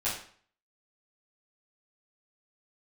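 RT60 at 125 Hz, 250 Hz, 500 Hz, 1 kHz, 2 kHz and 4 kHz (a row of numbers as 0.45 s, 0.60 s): 0.50 s, 0.50 s, 0.50 s, 0.50 s, 0.50 s, 0.45 s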